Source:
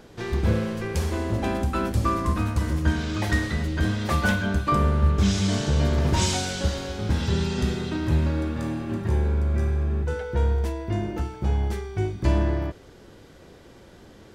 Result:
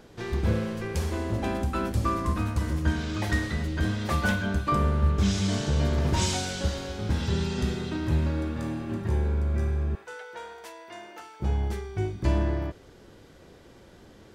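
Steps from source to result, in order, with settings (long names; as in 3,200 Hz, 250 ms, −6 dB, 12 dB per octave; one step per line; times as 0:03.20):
0:09.95–0:11.40: high-pass filter 820 Hz 12 dB per octave
level −3 dB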